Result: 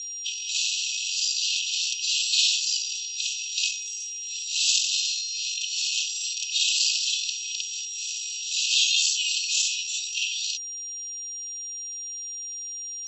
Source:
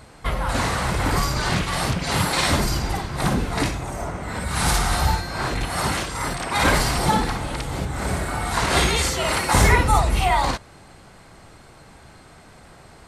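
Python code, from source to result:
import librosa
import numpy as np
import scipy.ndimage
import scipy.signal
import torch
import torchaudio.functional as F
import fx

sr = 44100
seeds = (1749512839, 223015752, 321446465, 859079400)

p1 = fx.rider(x, sr, range_db=10, speed_s=2.0)
p2 = x + (p1 * 10.0 ** (1.5 / 20.0))
p3 = fx.cheby_harmonics(p2, sr, harmonics=(8,), levels_db=(-25,), full_scale_db=2.0)
p4 = p3 + 10.0 ** (-30.0 / 20.0) * np.sin(2.0 * np.pi * 5700.0 * np.arange(len(p3)) / sr)
p5 = fx.brickwall_bandpass(p4, sr, low_hz=2500.0, high_hz=7900.0)
y = p5 * 10.0 ** (-2.5 / 20.0)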